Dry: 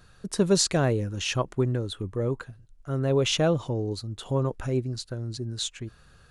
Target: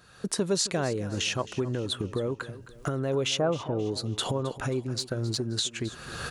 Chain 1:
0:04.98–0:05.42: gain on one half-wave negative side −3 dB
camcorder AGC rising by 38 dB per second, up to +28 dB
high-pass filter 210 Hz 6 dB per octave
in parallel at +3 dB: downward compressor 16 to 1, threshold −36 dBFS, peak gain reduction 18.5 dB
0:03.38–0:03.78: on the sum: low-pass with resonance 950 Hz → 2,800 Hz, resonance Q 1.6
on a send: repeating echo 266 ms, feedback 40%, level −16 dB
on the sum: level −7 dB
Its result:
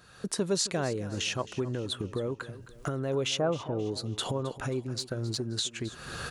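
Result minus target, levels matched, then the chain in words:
downward compressor: peak gain reduction +7.5 dB
0:04.98–0:05.42: gain on one half-wave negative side −3 dB
camcorder AGC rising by 38 dB per second, up to +28 dB
high-pass filter 210 Hz 6 dB per octave
in parallel at +3 dB: downward compressor 16 to 1, threshold −28 dBFS, peak gain reduction 11 dB
0:03.38–0:03.78: on the sum: low-pass with resonance 950 Hz → 2,800 Hz, resonance Q 1.6
on a send: repeating echo 266 ms, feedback 40%, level −16 dB
on the sum: level −7 dB

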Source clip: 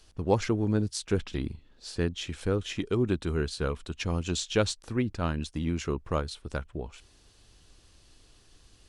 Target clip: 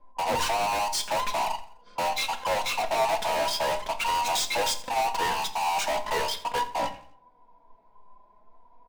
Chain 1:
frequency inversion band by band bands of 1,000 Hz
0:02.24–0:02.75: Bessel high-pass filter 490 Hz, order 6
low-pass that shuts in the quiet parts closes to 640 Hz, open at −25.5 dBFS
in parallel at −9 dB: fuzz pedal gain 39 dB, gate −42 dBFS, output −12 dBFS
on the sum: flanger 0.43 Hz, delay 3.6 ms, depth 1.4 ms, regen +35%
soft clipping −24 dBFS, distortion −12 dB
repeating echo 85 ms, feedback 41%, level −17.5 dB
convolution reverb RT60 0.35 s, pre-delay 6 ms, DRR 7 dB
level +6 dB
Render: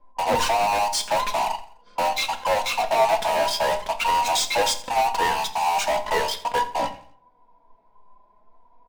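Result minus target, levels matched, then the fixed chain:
soft clipping: distortion −5 dB
frequency inversion band by band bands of 1,000 Hz
0:02.24–0:02.75: Bessel high-pass filter 490 Hz, order 6
low-pass that shuts in the quiet parts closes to 640 Hz, open at −25.5 dBFS
in parallel at −9 dB: fuzz pedal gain 39 dB, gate −42 dBFS, output −12 dBFS
on the sum: flanger 0.43 Hz, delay 3.6 ms, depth 1.4 ms, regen +35%
soft clipping −31 dBFS, distortion −7 dB
repeating echo 85 ms, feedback 41%, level −17.5 dB
convolution reverb RT60 0.35 s, pre-delay 6 ms, DRR 7 dB
level +6 dB

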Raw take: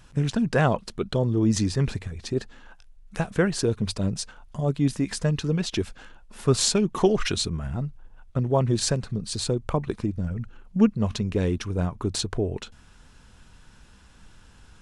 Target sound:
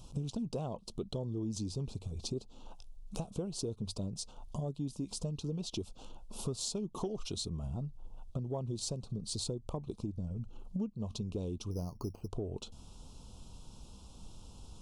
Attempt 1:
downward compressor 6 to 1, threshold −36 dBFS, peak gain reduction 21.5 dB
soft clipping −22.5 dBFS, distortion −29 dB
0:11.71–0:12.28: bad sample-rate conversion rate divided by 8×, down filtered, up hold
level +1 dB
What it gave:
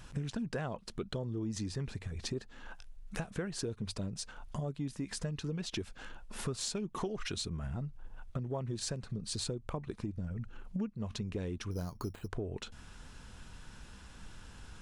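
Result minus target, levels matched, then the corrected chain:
2,000 Hz band +16.0 dB
downward compressor 6 to 1, threshold −36 dBFS, peak gain reduction 21.5 dB
Butterworth band-reject 1,800 Hz, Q 0.79
soft clipping −22.5 dBFS, distortion −30 dB
0:11.71–0:12.28: bad sample-rate conversion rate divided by 8×, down filtered, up hold
level +1 dB

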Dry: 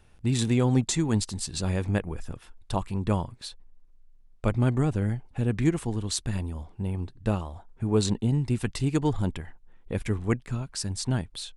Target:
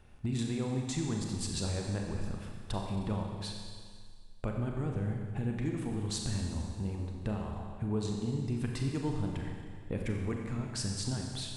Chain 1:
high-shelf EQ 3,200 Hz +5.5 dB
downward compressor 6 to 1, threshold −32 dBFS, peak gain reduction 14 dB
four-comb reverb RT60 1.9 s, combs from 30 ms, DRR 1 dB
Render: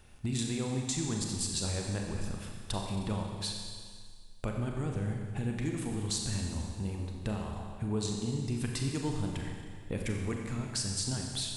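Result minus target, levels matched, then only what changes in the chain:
8,000 Hz band +5.0 dB
change: high-shelf EQ 3,200 Hz −6 dB

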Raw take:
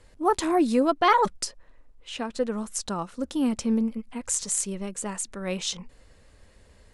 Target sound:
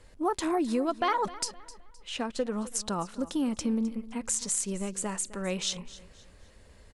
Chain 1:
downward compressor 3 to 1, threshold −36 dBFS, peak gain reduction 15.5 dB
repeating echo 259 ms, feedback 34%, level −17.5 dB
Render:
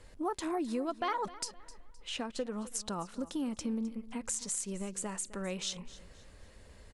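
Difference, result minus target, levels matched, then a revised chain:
downward compressor: peak gain reduction +6.5 dB
downward compressor 3 to 1, threshold −26.5 dBFS, peak gain reduction 9 dB
repeating echo 259 ms, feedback 34%, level −17.5 dB

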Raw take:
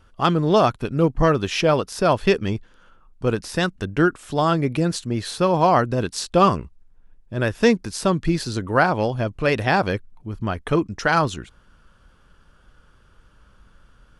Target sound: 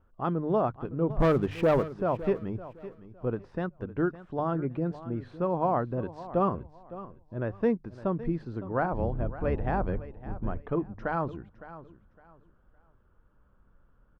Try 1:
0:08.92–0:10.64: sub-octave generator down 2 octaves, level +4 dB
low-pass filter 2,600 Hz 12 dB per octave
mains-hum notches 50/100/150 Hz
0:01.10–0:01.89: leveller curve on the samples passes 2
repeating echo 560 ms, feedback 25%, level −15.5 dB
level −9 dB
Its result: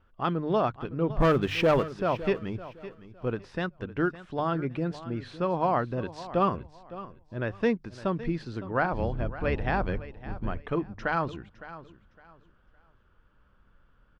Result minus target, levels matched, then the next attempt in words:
2,000 Hz band +5.5 dB
0:08.92–0:10.64: sub-octave generator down 2 octaves, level +4 dB
low-pass filter 1,100 Hz 12 dB per octave
mains-hum notches 50/100/150 Hz
0:01.10–0:01.89: leveller curve on the samples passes 2
repeating echo 560 ms, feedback 25%, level −15.5 dB
level −9 dB

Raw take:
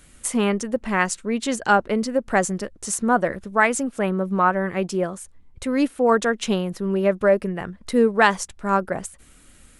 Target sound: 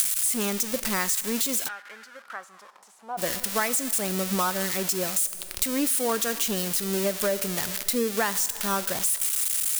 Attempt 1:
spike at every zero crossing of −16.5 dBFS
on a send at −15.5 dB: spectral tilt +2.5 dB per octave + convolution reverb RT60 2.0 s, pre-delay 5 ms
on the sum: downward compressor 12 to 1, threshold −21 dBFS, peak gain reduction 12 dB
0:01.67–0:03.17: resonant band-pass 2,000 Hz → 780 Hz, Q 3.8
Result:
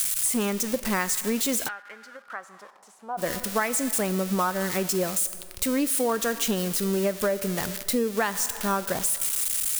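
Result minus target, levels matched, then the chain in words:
spike at every zero crossing: distortion −8 dB
spike at every zero crossing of −8.5 dBFS
on a send at −15.5 dB: spectral tilt +2.5 dB per octave + convolution reverb RT60 2.0 s, pre-delay 5 ms
on the sum: downward compressor 12 to 1, threshold −21 dBFS, peak gain reduction 12.5 dB
0:01.67–0:03.17: resonant band-pass 2,000 Hz → 780 Hz, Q 3.8

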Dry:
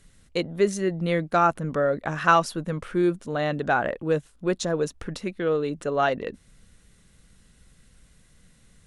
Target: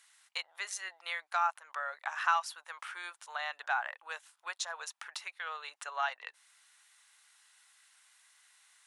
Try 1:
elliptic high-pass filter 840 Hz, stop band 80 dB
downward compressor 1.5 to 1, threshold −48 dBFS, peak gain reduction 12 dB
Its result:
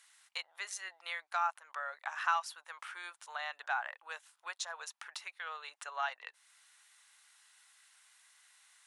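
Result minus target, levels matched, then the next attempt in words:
downward compressor: peak gain reduction +2.5 dB
elliptic high-pass filter 840 Hz, stop band 80 dB
downward compressor 1.5 to 1, threshold −40 dBFS, peak gain reduction 9.5 dB

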